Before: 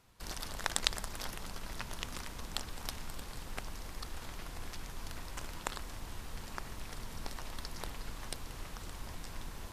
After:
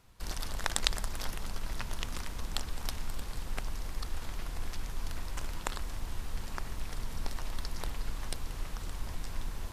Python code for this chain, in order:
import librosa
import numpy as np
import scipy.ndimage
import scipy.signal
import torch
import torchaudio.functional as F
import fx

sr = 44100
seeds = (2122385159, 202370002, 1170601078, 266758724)

y = fx.low_shelf(x, sr, hz=73.0, db=8.5)
y = y * 10.0 ** (1.5 / 20.0)